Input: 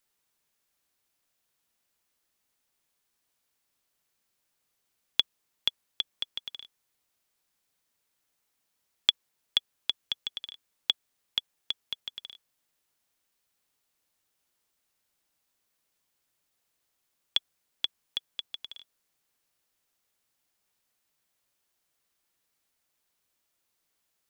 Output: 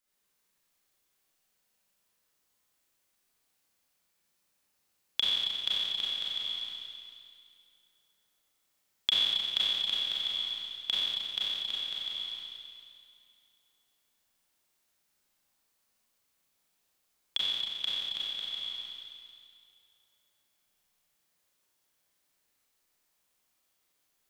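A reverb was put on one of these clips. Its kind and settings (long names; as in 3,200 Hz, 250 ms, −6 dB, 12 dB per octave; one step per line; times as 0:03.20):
four-comb reverb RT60 2.3 s, combs from 30 ms, DRR −8 dB
level −6.5 dB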